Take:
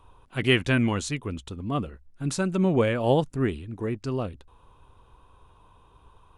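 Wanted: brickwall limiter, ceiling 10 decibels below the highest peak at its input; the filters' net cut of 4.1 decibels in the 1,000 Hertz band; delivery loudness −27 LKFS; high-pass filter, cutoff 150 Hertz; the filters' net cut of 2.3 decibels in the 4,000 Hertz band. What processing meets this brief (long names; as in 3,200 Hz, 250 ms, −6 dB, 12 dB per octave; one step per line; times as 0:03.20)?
high-pass filter 150 Hz
parametric band 1,000 Hz −5.5 dB
parametric band 4,000 Hz −3 dB
level +3.5 dB
brickwall limiter −12.5 dBFS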